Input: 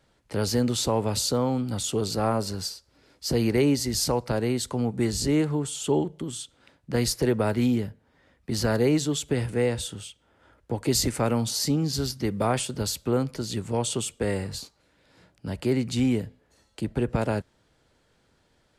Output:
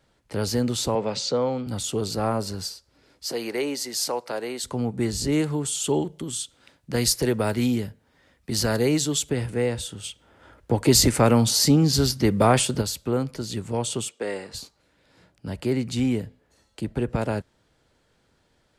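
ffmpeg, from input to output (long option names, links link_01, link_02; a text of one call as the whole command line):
ffmpeg -i in.wav -filter_complex "[0:a]asettb=1/sr,asplit=3[link_01][link_02][link_03];[link_01]atrim=end=0.954[link_04];[link_02]atrim=start=0.95:end=1.67,asetpts=PTS-STARTPTS,afade=type=in:duration=0.004:curve=qsin,afade=type=out:start_time=0.716:duration=0.004:curve=qsin,highpass=frequency=140:width=0.5412,highpass=frequency=140:width=1.3066,equalizer=frequency=280:width_type=q:width=4:gain=-6,equalizer=frequency=520:width_type=q:width=4:gain=5,equalizer=frequency=2200:width_type=q:width=4:gain=4,lowpass=frequency=6300:width=0.5412,lowpass=frequency=6300:width=1.3066[link_05];[link_03]atrim=start=1.666[link_06];[link_04][link_05]acrossfade=duration=0.004:curve1=hsin:curve2=qsin[link_07];[link_07][link_06]acrossfade=duration=0.004:curve1=qsin:curve2=hsin,asettb=1/sr,asplit=3[link_08][link_09][link_10];[link_08]atrim=end=3.264[link_11];[link_09]atrim=start=3.26:end=4.64,asetpts=PTS-STARTPTS,afade=type=in:duration=0.004:curve=qsin,afade=type=out:start_time=1.376:duration=0.004:curve=qsin,highpass=440[link_12];[link_10]atrim=start=4.636[link_13];[link_11][link_12]acrossfade=duration=0.004:curve1=hsin:curve2=qsin[link_14];[link_14][link_13]acrossfade=duration=0.004:curve1=qsin:curve2=hsin,asettb=1/sr,asplit=3[link_15][link_16][link_17];[link_15]atrim=end=5.324[link_18];[link_16]atrim=start=5.32:end=9.3,asetpts=PTS-STARTPTS,afade=type=in:duration=0.004:curve=qsin,afade=type=out:start_time=3.976:duration=0.004:curve=qsin,highshelf=frequency=3000:gain=7.5[link_19];[link_17]atrim=start=9.296[link_20];[link_18][link_19]acrossfade=duration=0.004:curve1=hsin:curve2=qsin[link_21];[link_21][link_20]acrossfade=duration=0.004:curve1=qsin:curve2=hsin,asplit=3[link_22][link_23][link_24];[link_22]afade=type=out:start_time=10.03:duration=0.02[link_25];[link_23]acontrast=84,afade=type=in:start_time=10.03:duration=0.02,afade=type=out:start_time=12.8:duration=0.02[link_26];[link_24]afade=type=in:start_time=12.8:duration=0.02[link_27];[link_25][link_26][link_27]amix=inputs=3:normalize=0,asplit=3[link_28][link_29][link_30];[link_28]afade=type=out:start_time=14.08:duration=0.02[link_31];[link_29]highpass=340,lowpass=7700,afade=type=in:start_time=14.08:duration=0.02,afade=type=out:start_time=14.53:duration=0.02[link_32];[link_30]afade=type=in:start_time=14.53:duration=0.02[link_33];[link_31][link_32][link_33]amix=inputs=3:normalize=0" out.wav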